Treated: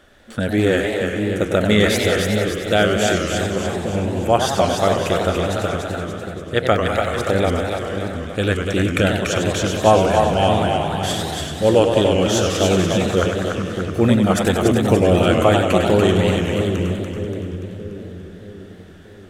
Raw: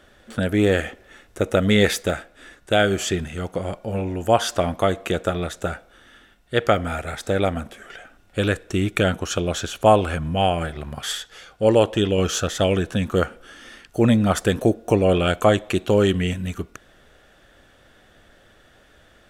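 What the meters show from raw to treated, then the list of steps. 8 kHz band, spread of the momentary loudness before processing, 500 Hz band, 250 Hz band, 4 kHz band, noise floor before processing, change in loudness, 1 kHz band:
+4.0 dB, 13 LU, +4.0 dB, +4.0 dB, +4.0 dB, −55 dBFS, +3.5 dB, +4.5 dB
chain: echo with a time of its own for lows and highs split 430 Hz, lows 630 ms, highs 289 ms, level −4.5 dB
feedback echo with a swinging delay time 95 ms, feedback 70%, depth 210 cents, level −7 dB
level +1 dB

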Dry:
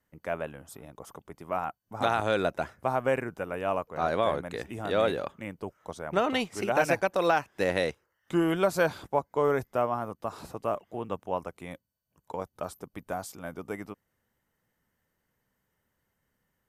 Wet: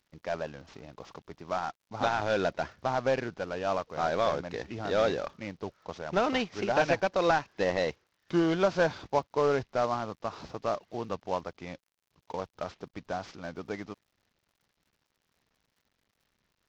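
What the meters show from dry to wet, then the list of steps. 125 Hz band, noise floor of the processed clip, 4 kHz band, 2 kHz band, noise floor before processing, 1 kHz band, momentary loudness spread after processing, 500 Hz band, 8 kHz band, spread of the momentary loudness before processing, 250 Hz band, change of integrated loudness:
−1.0 dB, −80 dBFS, 0.0 dB, −1.0 dB, −79 dBFS, −1.0 dB, 15 LU, −0.5 dB, −3.0 dB, 16 LU, −1.0 dB, −1.0 dB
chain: variable-slope delta modulation 32 kbit/s
surface crackle 68 per second −58 dBFS

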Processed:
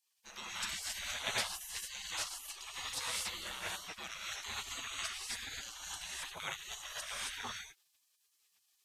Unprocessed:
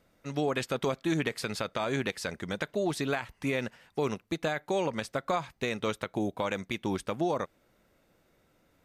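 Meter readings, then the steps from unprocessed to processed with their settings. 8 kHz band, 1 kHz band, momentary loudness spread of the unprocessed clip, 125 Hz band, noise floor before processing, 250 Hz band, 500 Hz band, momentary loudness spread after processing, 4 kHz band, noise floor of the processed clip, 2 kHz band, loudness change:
+5.5 dB, −11.0 dB, 4 LU, −21.5 dB, −69 dBFS, −27.5 dB, −23.0 dB, 7 LU, +1.5 dB, −77 dBFS, −5.5 dB, −7.5 dB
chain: reverb whose tail is shaped and stops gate 300 ms rising, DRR −6 dB
gate on every frequency bin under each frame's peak −25 dB weak

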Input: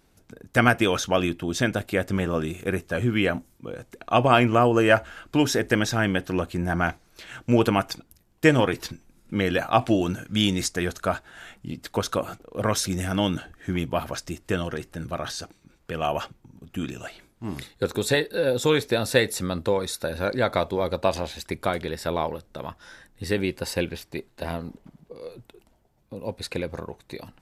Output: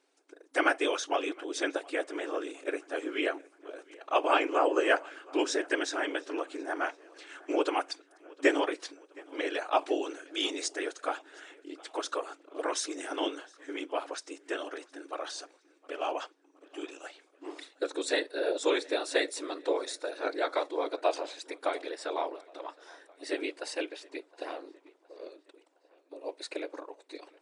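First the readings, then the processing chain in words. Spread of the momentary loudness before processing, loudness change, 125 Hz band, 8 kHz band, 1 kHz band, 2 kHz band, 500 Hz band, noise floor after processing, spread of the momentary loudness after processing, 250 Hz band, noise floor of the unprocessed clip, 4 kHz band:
17 LU, −7.5 dB, below −40 dB, −7.0 dB, −6.0 dB, −6.5 dB, −6.5 dB, −66 dBFS, 18 LU, −11.0 dB, −62 dBFS, −6.5 dB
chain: random phases in short frames
brick-wall band-pass 270–10,000 Hz
tape delay 715 ms, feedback 55%, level −23 dB, low-pass 5,300 Hz
level −6.5 dB

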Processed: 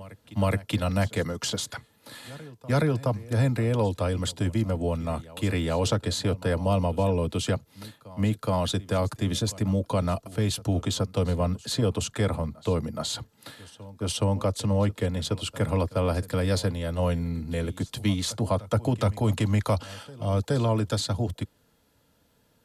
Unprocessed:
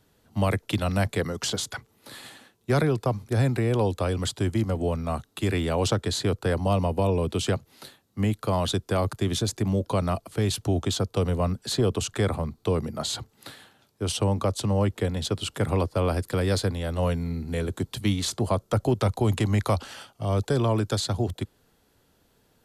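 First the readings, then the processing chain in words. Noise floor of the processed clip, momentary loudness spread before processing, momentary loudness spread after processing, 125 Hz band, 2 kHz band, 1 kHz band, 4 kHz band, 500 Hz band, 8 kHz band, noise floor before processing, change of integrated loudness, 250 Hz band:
−65 dBFS, 7 LU, 9 LU, −0.5 dB, −1.5 dB, −1.5 dB, −1.0 dB, −1.5 dB, −1.0 dB, −66 dBFS, −0.5 dB, −0.5 dB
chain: notch comb filter 380 Hz
backwards echo 421 ms −19.5 dB

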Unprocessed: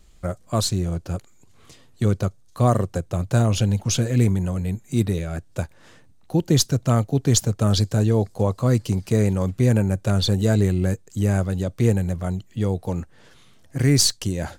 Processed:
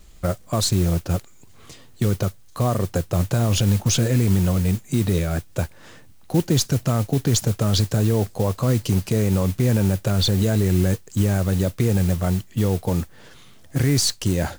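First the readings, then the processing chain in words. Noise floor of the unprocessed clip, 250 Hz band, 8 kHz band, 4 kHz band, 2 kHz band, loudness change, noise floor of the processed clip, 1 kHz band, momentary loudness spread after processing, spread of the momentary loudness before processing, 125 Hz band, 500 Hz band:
−51 dBFS, +0.5 dB, 0.0 dB, +0.5 dB, +1.5 dB, +0.5 dB, −46 dBFS, −0.5 dB, 7 LU, 10 LU, +0.5 dB, 0.0 dB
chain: brickwall limiter −15 dBFS, peak gain reduction 10.5 dB
noise that follows the level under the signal 19 dB
level +5 dB

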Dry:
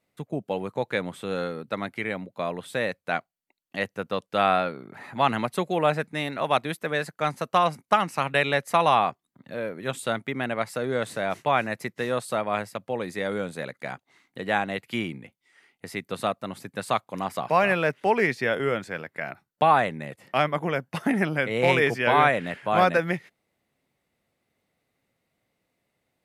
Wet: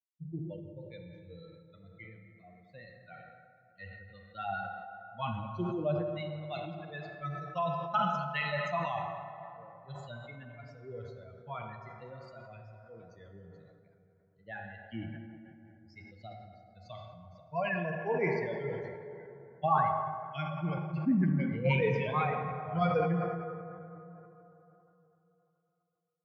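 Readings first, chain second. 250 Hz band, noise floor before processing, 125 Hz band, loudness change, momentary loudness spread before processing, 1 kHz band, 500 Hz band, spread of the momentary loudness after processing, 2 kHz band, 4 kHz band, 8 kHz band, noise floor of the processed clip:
−6.0 dB, −80 dBFS, −2.0 dB, −8.0 dB, 14 LU, −10.5 dB, −10.5 dB, 22 LU, −13.0 dB, −15.0 dB, below −25 dB, −70 dBFS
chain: spectral dynamics exaggerated over time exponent 3
Butterworth low-pass 6,700 Hz 96 dB per octave
bass and treble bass +8 dB, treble −13 dB
auto-filter notch sine 4.5 Hz 530–1,600 Hz
pitch vibrato 0.51 Hz 83 cents
dense smooth reverb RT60 3.4 s, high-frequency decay 0.4×, DRR 3.5 dB
level that may fall only so fast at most 35 dB per second
level −4 dB

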